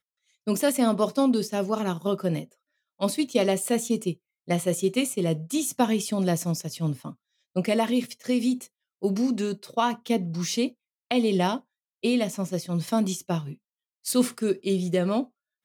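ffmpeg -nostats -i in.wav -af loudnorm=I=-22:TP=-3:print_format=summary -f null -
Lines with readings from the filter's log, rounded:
Input Integrated:    -26.5 LUFS
Input True Peak:      -9.6 dBTP
Input LRA:             1.4 LU
Input Threshold:     -37.0 LUFS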